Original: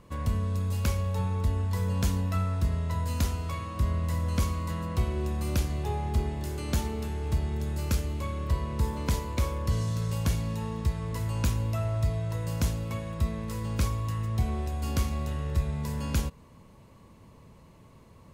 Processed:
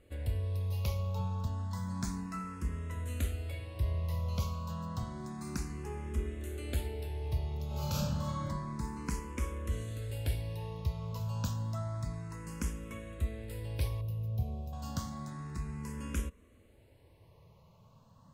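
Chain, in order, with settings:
0:07.66–0:08.45: thrown reverb, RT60 1.1 s, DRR −6 dB
0:14.01–0:14.73: drawn EQ curve 580 Hz 0 dB, 1,600 Hz −26 dB, 2,400 Hz −9 dB, 7,700 Hz −11 dB, 13,000 Hz +2 dB
frequency shifter mixed with the dry sound +0.3 Hz
level −4.5 dB

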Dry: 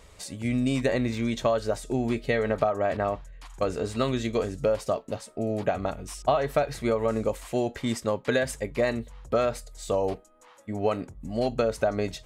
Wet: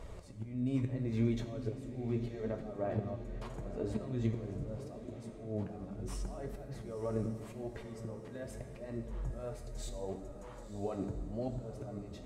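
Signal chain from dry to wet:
downward compressor 12 to 1, threshold −33 dBFS, peak gain reduction 15.5 dB
volume swells 372 ms
tilt shelving filter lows +7.5 dB, about 1,300 Hz
feedback delay with all-pass diffusion 978 ms, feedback 47%, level −11 dB
on a send at −6 dB: convolution reverb RT60 1.5 s, pre-delay 4 ms
on the sum: flanger 0.78 Hz, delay 2.7 ms, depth 9.9 ms, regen +62%
level +3 dB

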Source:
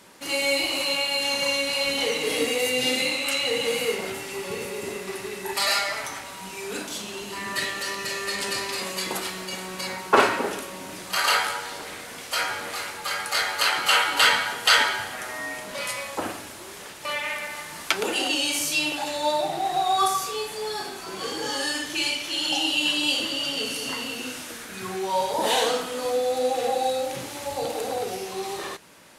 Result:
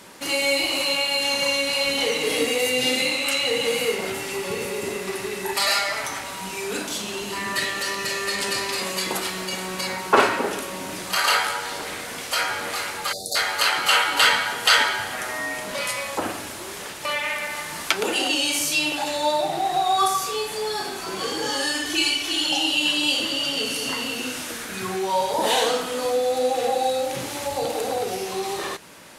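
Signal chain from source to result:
0:13.12–0:13.36: time-frequency box erased 760–3,500 Hz
0:21.85–0:22.44: comb filter 2.7 ms, depth 76%
in parallel at −0.5 dB: downward compressor, threshold −33 dBFS, peak gain reduction 19.5 dB

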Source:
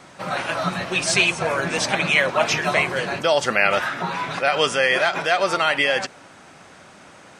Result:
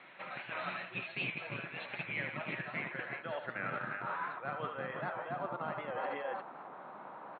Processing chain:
band-pass filter sweep 2,300 Hz → 1,000 Hz, 0:01.89–0:05.52
multi-tap delay 77/168/316/351 ms −7.5/−12/−14.5/−9.5 dB
in parallel at −5.5 dB: comparator with hysteresis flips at −18.5 dBFS
on the sum: tilt shelving filter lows +8.5 dB, about 870 Hz
reversed playback
downward compressor 8 to 1, threshold −38 dBFS, peak gain reduction 19 dB
reversed playback
brick-wall band-pass 110–4,300 Hz
wow of a warped record 78 rpm, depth 100 cents
level +3 dB

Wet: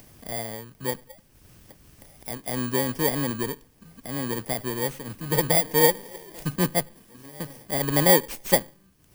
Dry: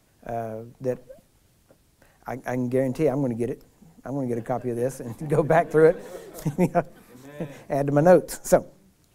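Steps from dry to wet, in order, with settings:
samples in bit-reversed order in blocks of 32 samples
upward compression, threshold −37 dBFS
level −2 dB

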